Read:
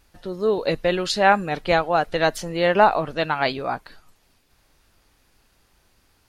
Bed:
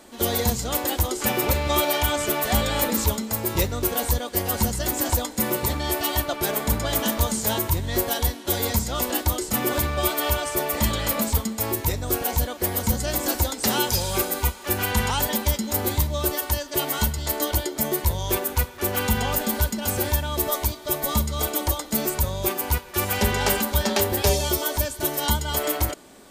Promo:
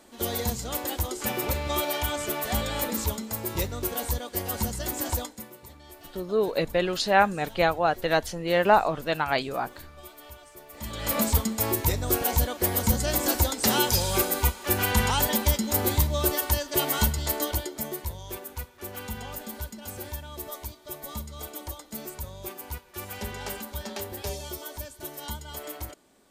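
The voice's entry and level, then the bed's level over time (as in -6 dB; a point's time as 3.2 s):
5.90 s, -3.5 dB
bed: 5.23 s -6 dB
5.5 s -23 dB
10.67 s -23 dB
11.16 s -0.5 dB
17.18 s -0.5 dB
18.25 s -13.5 dB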